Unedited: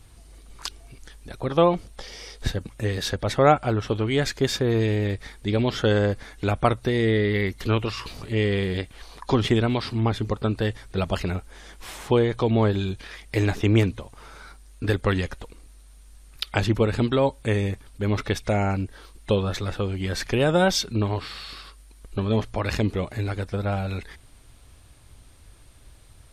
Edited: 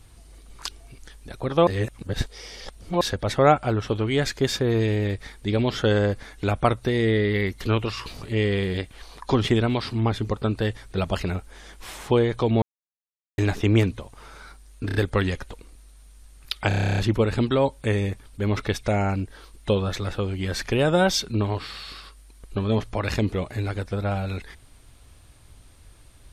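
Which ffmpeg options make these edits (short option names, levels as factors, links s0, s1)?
-filter_complex "[0:a]asplit=18[s0][s1][s2][s3][s4][s5][s6][s7][s8][s9][s10][s11][s12][s13][s14][s15][s16][s17];[s0]atrim=end=1.672[s18];[s1]atrim=start=1.668:end=3.012,asetpts=PTS-STARTPTS,areverse[s19];[s2]atrim=start=3.008:end=12.62,asetpts=PTS-STARTPTS,afade=t=out:st=9.608:d=0.004:c=hsin[s20];[s3]atrim=start=12.62:end=13.38,asetpts=PTS-STARTPTS,volume=0[s21];[s4]atrim=start=13.38:end=14.892,asetpts=PTS-STARTPTS,afade=t=in:d=0.004:c=hsin[s22];[s5]atrim=start=14.858:end=14.892[s23];[s6]atrim=start=14.858:end=14.892[s24];[s7]atrim=start=14.858:end=16.622[s25];[s8]atrim=start=16.588:end=16.622[s26];[s9]atrim=start=16.588:end=16.622[s27];[s10]atrim=start=16.588:end=16.622[s28];[s11]atrim=start=16.588:end=16.622[s29];[s12]atrim=start=16.588:end=16.622[s30];[s13]atrim=start=16.588:end=16.622[s31];[s14]atrim=start=16.588:end=16.622[s32];[s15]atrim=start=16.588:end=16.622[s33];[s16]atrim=start=16.588:end=16.622[s34];[s17]atrim=start=16.588[s35];[s18][s19]acrossfade=d=0.004:c1=hsin:c2=hsin[s36];[s20][s21][s22]concat=n=3:v=0:a=1[s37];[s36][s37]acrossfade=d=0.004:c1=hsin:c2=hsin[s38];[s38][s23]acrossfade=d=0.004:c1=hsin:c2=hsin[s39];[s39][s24]acrossfade=d=0.004:c1=hsin:c2=hsin[s40];[s40][s25]acrossfade=d=0.004:c1=hsin:c2=hsin[s41];[s41][s26]acrossfade=d=0.004:c1=hsin:c2=hsin[s42];[s42][s27]acrossfade=d=0.004:c1=hsin:c2=hsin[s43];[s43][s28]acrossfade=d=0.004:c1=hsin:c2=hsin[s44];[s44][s29]acrossfade=d=0.004:c1=hsin:c2=hsin[s45];[s45][s30]acrossfade=d=0.004:c1=hsin:c2=hsin[s46];[s46][s31]acrossfade=d=0.004:c1=hsin:c2=hsin[s47];[s47][s32]acrossfade=d=0.004:c1=hsin:c2=hsin[s48];[s48][s33]acrossfade=d=0.004:c1=hsin:c2=hsin[s49];[s49][s34]acrossfade=d=0.004:c1=hsin:c2=hsin[s50];[s50][s35]acrossfade=d=0.004:c1=hsin:c2=hsin"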